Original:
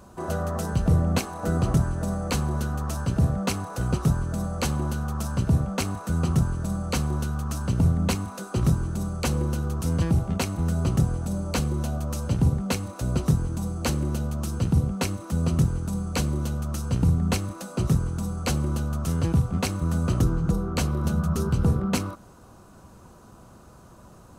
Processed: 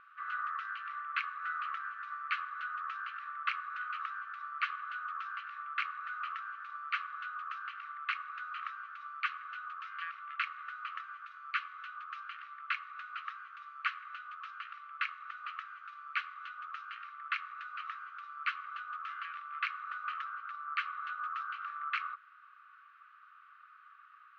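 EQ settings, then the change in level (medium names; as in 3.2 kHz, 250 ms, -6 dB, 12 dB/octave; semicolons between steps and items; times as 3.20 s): brick-wall FIR high-pass 1.1 kHz; low-pass 2.5 kHz 24 dB/octave; distance through air 120 m; +4.0 dB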